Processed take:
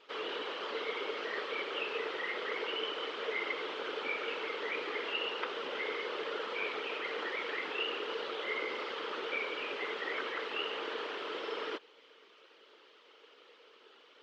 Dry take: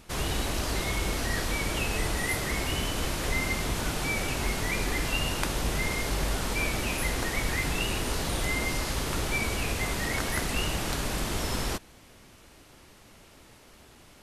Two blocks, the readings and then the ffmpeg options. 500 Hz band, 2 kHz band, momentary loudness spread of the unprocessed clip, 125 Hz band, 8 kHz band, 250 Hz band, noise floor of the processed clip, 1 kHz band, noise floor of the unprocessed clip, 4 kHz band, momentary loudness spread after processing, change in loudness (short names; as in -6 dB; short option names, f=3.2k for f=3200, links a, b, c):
-2.0 dB, -5.5 dB, 2 LU, under -35 dB, under -25 dB, -14.0 dB, -61 dBFS, -5.0 dB, -54 dBFS, -5.5 dB, 3 LU, -7.0 dB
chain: -filter_complex "[0:a]acrossover=split=3000[a][b];[b]acompressor=threshold=-43dB:ratio=4:attack=1:release=60[c];[a][c]amix=inputs=2:normalize=0,afftfilt=real='hypot(re,im)*cos(2*PI*random(0))':imag='hypot(re,im)*sin(2*PI*random(1))':win_size=512:overlap=0.75,highpass=f=370:w=0.5412,highpass=f=370:w=1.3066,equalizer=f=450:t=q:w=4:g=10,equalizer=f=710:t=q:w=4:g=-7,equalizer=f=1.3k:t=q:w=4:g=5,equalizer=f=3.1k:t=q:w=4:g=8,lowpass=f=4.4k:w=0.5412,lowpass=f=4.4k:w=1.3066"